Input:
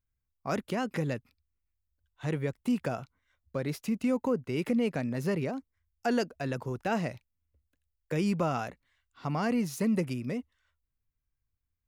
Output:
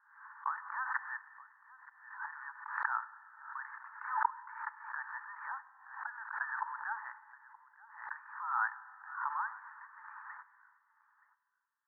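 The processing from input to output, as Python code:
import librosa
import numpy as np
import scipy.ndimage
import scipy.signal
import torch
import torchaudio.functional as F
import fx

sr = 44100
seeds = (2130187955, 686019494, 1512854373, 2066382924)

y = fx.over_compress(x, sr, threshold_db=-35.0, ratio=-1.0)
y = fx.mod_noise(y, sr, seeds[0], snr_db=13)
y = scipy.signal.sosfilt(scipy.signal.cheby1(5, 1.0, [860.0, 1800.0], 'bandpass', fs=sr, output='sos'), y)
y = y + 10.0 ** (-20.5 / 20.0) * np.pad(y, (int(924 * sr / 1000.0), 0))[:len(y)]
y = fx.rev_schroeder(y, sr, rt60_s=2.1, comb_ms=31, drr_db=15.0)
y = fx.pre_swell(y, sr, db_per_s=84.0)
y = F.gain(torch.from_numpy(y), 7.0).numpy()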